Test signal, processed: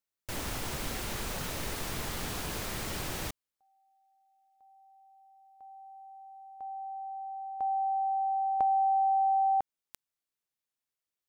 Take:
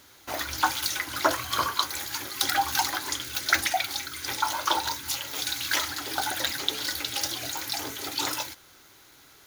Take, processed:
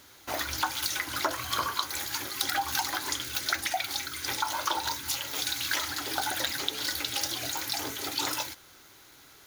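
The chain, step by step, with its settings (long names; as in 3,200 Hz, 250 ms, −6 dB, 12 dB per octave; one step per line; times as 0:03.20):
downward compressor 6 to 1, threshold −25 dBFS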